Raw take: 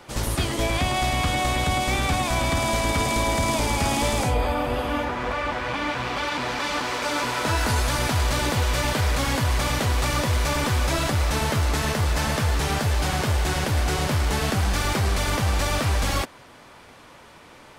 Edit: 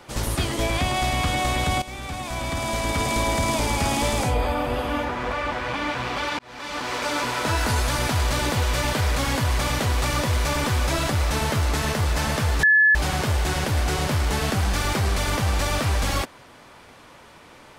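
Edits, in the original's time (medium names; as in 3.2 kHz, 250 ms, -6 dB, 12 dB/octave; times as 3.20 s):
1.82–3.18 s: fade in, from -14.5 dB
6.39–6.96 s: fade in
12.63–12.95 s: bleep 1.72 kHz -12.5 dBFS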